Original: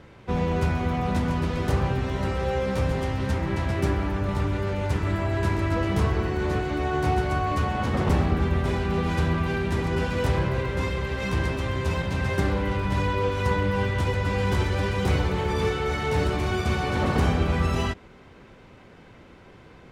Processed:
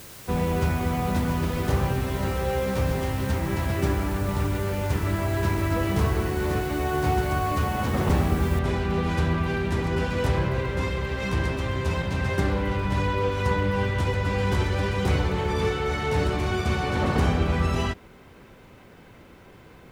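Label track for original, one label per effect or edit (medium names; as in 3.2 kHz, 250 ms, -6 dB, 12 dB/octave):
8.590000	8.590000	noise floor step -45 dB -69 dB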